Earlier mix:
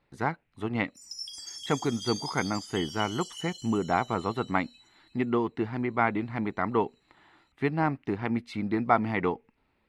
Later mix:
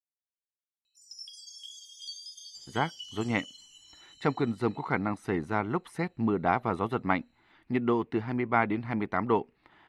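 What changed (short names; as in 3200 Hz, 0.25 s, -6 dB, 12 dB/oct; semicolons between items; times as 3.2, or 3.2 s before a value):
speech: entry +2.55 s; background: add tilt -2.5 dB/oct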